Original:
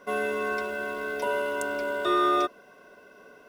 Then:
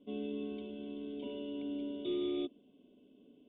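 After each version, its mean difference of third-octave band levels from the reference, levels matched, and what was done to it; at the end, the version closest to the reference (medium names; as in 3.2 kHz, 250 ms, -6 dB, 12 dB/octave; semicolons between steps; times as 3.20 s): 11.5 dB: FFT filter 890 Hz 0 dB, 1.9 kHz -20 dB, 3.3 kHz +7 dB; overload inside the chain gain 21 dB; cascade formant filter i; trim +4 dB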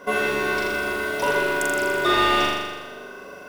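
7.0 dB: single-diode clipper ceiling -18.5 dBFS; in parallel at -4 dB: hard clipper -26.5 dBFS, distortion -10 dB; on the sum: flutter echo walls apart 7 m, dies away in 1.3 s; trim +4.5 dB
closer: second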